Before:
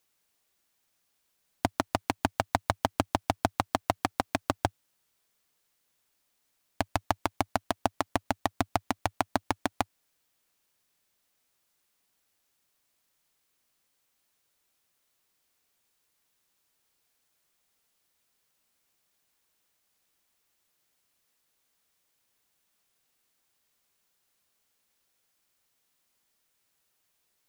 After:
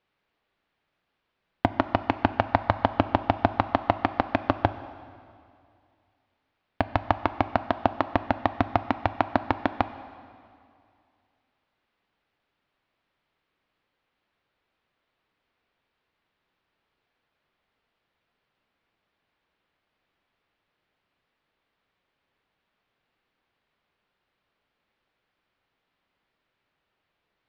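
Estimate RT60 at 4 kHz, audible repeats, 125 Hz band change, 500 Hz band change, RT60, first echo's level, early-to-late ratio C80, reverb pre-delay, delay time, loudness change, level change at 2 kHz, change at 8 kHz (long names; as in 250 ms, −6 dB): 2.2 s, no echo audible, +6.0 dB, +5.5 dB, 2.4 s, no echo audible, 14.0 dB, 5 ms, no echo audible, +5.0 dB, +4.0 dB, below −20 dB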